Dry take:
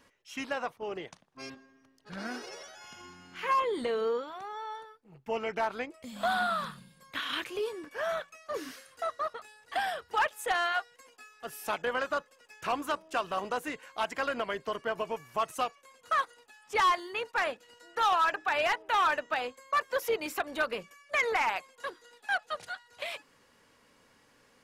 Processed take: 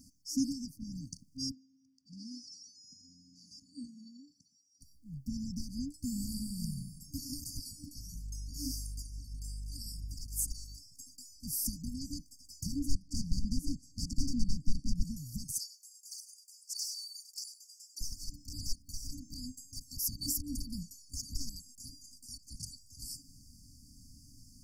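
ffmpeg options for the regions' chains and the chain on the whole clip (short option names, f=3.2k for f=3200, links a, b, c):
-filter_complex "[0:a]asettb=1/sr,asplit=3[a][b][c];[a]atrim=end=1.514[d];[b]atrim=start=1.51:end=4.81,asetpts=PTS-STARTPTS,afade=t=in:d=0.004:c=qsin,afade=t=out:st=3.296:d=0.004:c=qsin,highpass=350,lowpass=3.5k,equalizer=f=870:w=0.37:g=-13[e];[c]atrim=start=4.806[f];[d][e]acrossfade=d=0.004:c1=hsin:c2=qsin[g];[g][f]acrossfade=d=0.004:c1=qsin:c2=hsin,asettb=1/sr,asplit=3[h][i][j];[h]atrim=end=7.984[k];[i]atrim=start=7.98:end=10.78,asetpts=PTS-STARTPTS,afade=t=in:d=0.004:c=qsin,afade=t=out:st=2.796:d=0.004:c=qsin,aeval=exprs='val(0)+0.000891*(sin(2*PI*50*n/s)+sin(2*PI*2*50*n/s)/2+sin(2*PI*3*50*n/s)/3+sin(2*PI*4*50*n/s)/4+sin(2*PI*5*50*n/s)/5)':c=same,acompressor=threshold=-39dB:ratio=2:attack=3.2:release=140:knee=1:detection=peak[l];[j]atrim=start=10.776[m];[k][l]acrossfade=d=0.004:c1=hsin:c2=qsin[n];[n][m]acrossfade=d=0.004:c1=qsin:c2=hsin,asettb=1/sr,asplit=3[o][p][q];[o]atrim=end=12.794[r];[p]atrim=start=12.79:end=15.03,asetpts=PTS-STARTPTS,afade=t=in:d=0.004:c=qsin,afade=t=out:st=2.236:d=0.004:c=qsin,aeval=exprs='0.0237*(abs(mod(val(0)/0.0237+3,4)-2)-1)':c=same,aemphasis=mode=reproduction:type=50fm[s];[q]atrim=start=15.026[t];[r][s]acrossfade=d=0.004:c1=hsin:c2=qsin[u];[u][t]acrossfade=d=0.004:c1=qsin:c2=hsin,asettb=1/sr,asplit=3[v][w][x];[v]atrim=end=15.584[y];[w]atrim=start=15.58:end=18.01,asetpts=PTS-STARTPTS,afade=t=in:d=0.004:c=qsin,afade=t=out:st=2.426:d=0.004:c=qsin,highpass=f=1.3k:w=0.5412,highpass=f=1.3k:w=1.3066,aecho=1:1:98:0.178,atrim=end_sample=107163[z];[x]atrim=start=18.006[aa];[y][z]acrossfade=d=0.004:c1=hsin:c2=qsin[ab];[ab][aa]acrossfade=d=0.004:c1=qsin:c2=hsin,acompressor=threshold=-30dB:ratio=3,afftfilt=real='re*(1-between(b*sr/4096,300,4500))':imag='im*(1-between(b*sr/4096,300,4500))':win_size=4096:overlap=0.75,asubboost=boost=5:cutoff=94,volume=11dB"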